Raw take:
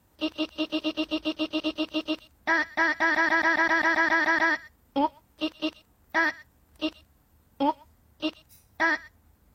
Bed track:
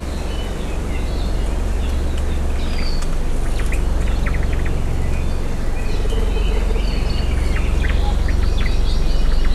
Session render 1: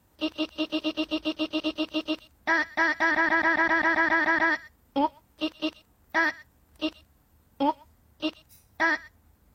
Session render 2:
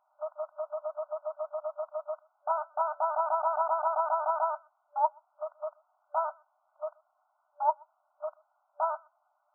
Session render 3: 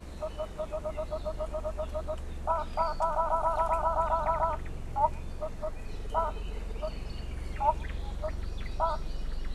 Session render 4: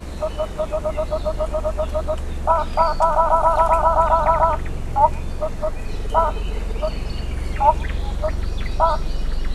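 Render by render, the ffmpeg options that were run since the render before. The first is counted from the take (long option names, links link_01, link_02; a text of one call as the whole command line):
ffmpeg -i in.wav -filter_complex "[0:a]asettb=1/sr,asplit=3[link_01][link_02][link_03];[link_01]atrim=end=3.114[link_04];[link_02]atrim=start=3.11:end=4.52,asetpts=PTS-STARTPTS,afade=type=in:duration=0.004:curve=qsin,afade=type=out:start_time=1.406:duration=0.004:curve=qsin,bass=frequency=250:gain=4,treble=frequency=4000:gain=-8[link_05];[link_03]atrim=start=4.516[link_06];[link_04][link_05]acrossfade=duration=0.004:curve1=hsin:curve2=qsin[link_07];[link_07][link_06]acrossfade=duration=0.004:curve1=qsin:curve2=hsin" out.wav
ffmpeg -i in.wav -af "aemphasis=mode=reproduction:type=riaa,afftfilt=real='re*between(b*sr/4096,590,1500)':imag='im*between(b*sr/4096,590,1500)':win_size=4096:overlap=0.75" out.wav
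ffmpeg -i in.wav -i bed.wav -filter_complex "[1:a]volume=-19dB[link_01];[0:a][link_01]amix=inputs=2:normalize=0" out.wav
ffmpeg -i in.wav -af "volume=12dB,alimiter=limit=-2dB:level=0:latency=1" out.wav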